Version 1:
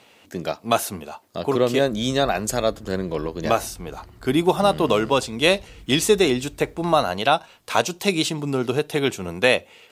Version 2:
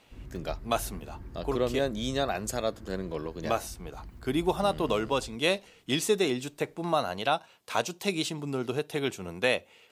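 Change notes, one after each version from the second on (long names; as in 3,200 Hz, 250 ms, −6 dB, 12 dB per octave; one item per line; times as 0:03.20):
speech −8.5 dB
background: entry −1.75 s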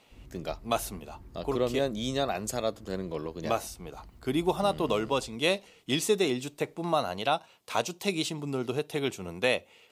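background −6.0 dB
master: add parametric band 1,600 Hz −4.5 dB 0.33 octaves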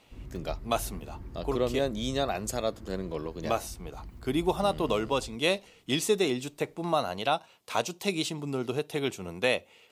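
background +7.0 dB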